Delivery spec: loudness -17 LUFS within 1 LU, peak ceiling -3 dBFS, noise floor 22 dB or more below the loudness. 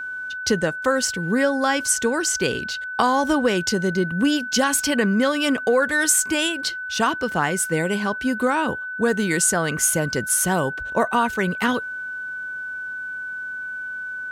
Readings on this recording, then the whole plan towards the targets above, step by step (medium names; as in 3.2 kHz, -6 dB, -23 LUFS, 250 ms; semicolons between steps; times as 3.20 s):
steady tone 1.5 kHz; tone level -28 dBFS; loudness -21.5 LUFS; peak level -4.0 dBFS; loudness target -17.0 LUFS
-> band-stop 1.5 kHz, Q 30; trim +4.5 dB; peak limiter -3 dBFS